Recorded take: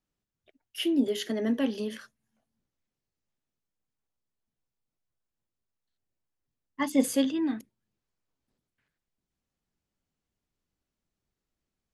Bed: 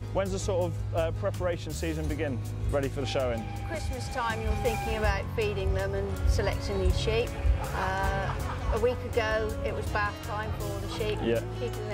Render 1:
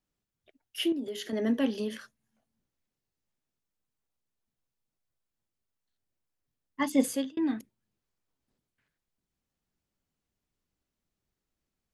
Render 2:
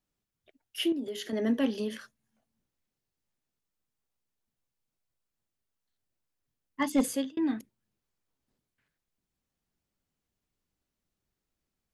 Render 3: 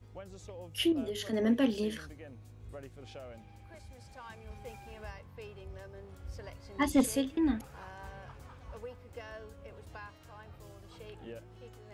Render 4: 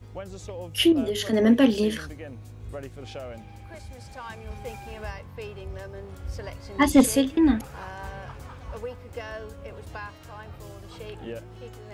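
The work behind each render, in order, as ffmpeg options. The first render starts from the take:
ffmpeg -i in.wav -filter_complex "[0:a]asettb=1/sr,asplit=3[link_01][link_02][link_03];[link_01]atrim=end=0.924[link_04];[link_02]atrim=start=0.92:end=1.33,asetpts=PTS-STARTPTS,afade=type=in:duration=0.004:curve=qsin,afade=type=out:start_time=0.406:duration=0.004:curve=qsin,acompressor=threshold=-35dB:ratio=3:attack=3.2:release=140:knee=1:detection=peak[link_05];[link_03]atrim=start=1.326[link_06];[link_04][link_05]acrossfade=duration=0.004:curve1=hsin:curve2=qsin[link_07];[link_07][link_06]acrossfade=duration=0.004:curve1=qsin:curve2=hsin,asplit=2[link_08][link_09];[link_08]atrim=end=7.37,asetpts=PTS-STARTPTS,afade=type=out:start_time=6.85:duration=0.52:curve=qsin[link_10];[link_09]atrim=start=7.37,asetpts=PTS-STARTPTS,afade=type=in:duration=0.004:curve=hsin[link_11];[link_10][link_11]concat=n=2:v=0:a=1" out.wav
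ffmpeg -i in.wav -af "asoftclip=type=hard:threshold=-18dB" out.wav
ffmpeg -i in.wav -i bed.wav -filter_complex "[1:a]volume=-18.5dB[link_01];[0:a][link_01]amix=inputs=2:normalize=0" out.wav
ffmpeg -i in.wav -af "volume=9.5dB" out.wav

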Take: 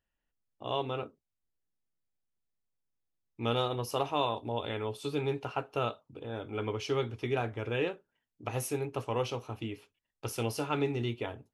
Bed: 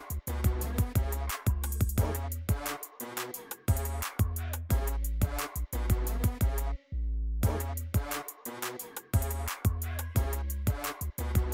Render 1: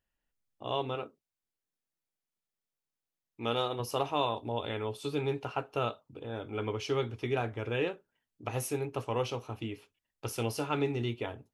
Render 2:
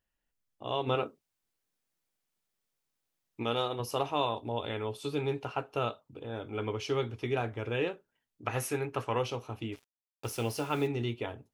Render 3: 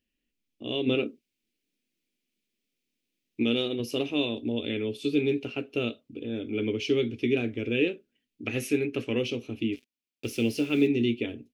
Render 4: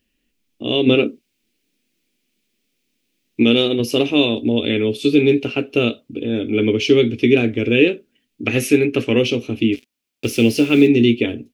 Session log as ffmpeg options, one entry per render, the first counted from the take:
ffmpeg -i in.wav -filter_complex "[0:a]asettb=1/sr,asplit=3[link_01][link_02][link_03];[link_01]atrim=end=0.954[link_04];[link_02]atrim=start=0.95:end=3.8,asetpts=PTS-STARTPTS,afade=type=in:duration=0.004:curve=qsin,afade=type=out:start_time=2.846:duration=0.004:curve=qsin,lowshelf=frequency=130:gain=-11.5[link_05];[link_03]atrim=start=3.796[link_06];[link_04][link_05]acrossfade=duration=0.004:curve1=hsin:curve2=qsin[link_07];[link_07][link_06]acrossfade=duration=0.004:curve1=qsin:curve2=hsin" out.wav
ffmpeg -i in.wav -filter_complex "[0:a]asplit=3[link_01][link_02][link_03];[link_01]afade=type=out:start_time=0.86:duration=0.02[link_04];[link_02]acontrast=66,afade=type=in:start_time=0.86:duration=0.02,afade=type=out:start_time=3.42:duration=0.02[link_05];[link_03]afade=type=in:start_time=3.42:duration=0.02[link_06];[link_04][link_05][link_06]amix=inputs=3:normalize=0,asettb=1/sr,asplit=3[link_07][link_08][link_09];[link_07]atrim=end=8.454[link_10];[link_08]atrim=start=8.45:end=9.19,asetpts=PTS-STARTPTS,afade=type=in:duration=0.004:curve=qsin,afade=type=out:start_time=0.736:duration=0.004:curve=qsin,equalizer=frequency=1600:width_type=o:width=1.1:gain=9[link_11];[link_09]atrim=start=9.186[link_12];[link_10][link_11]acrossfade=duration=0.004:curve1=hsin:curve2=qsin[link_13];[link_13][link_12]acrossfade=duration=0.004:curve1=qsin:curve2=hsin,asplit=3[link_14][link_15][link_16];[link_14]afade=type=out:start_time=9.72:duration=0.02[link_17];[link_15]acrusher=bits=7:mix=0:aa=0.5,afade=type=in:start_time=9.72:duration=0.02,afade=type=out:start_time=10.86:duration=0.02[link_18];[link_16]afade=type=in:start_time=10.86:duration=0.02[link_19];[link_17][link_18][link_19]amix=inputs=3:normalize=0" out.wav
ffmpeg -i in.wav -af "firequalizer=gain_entry='entry(150,0);entry(240,14);entry(900,-18);entry(2400,9);entry(3900,4);entry(8200,-2)':delay=0.05:min_phase=1" out.wav
ffmpeg -i in.wav -af "volume=12dB,alimiter=limit=-2dB:level=0:latency=1" out.wav

